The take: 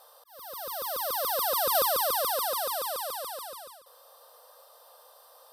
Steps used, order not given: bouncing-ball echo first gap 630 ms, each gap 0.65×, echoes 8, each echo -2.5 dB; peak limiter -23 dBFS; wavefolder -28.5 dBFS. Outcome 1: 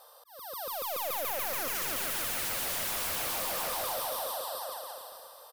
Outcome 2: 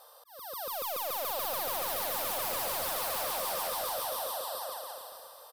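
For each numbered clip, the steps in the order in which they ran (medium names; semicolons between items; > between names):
bouncing-ball echo > wavefolder > peak limiter; peak limiter > bouncing-ball echo > wavefolder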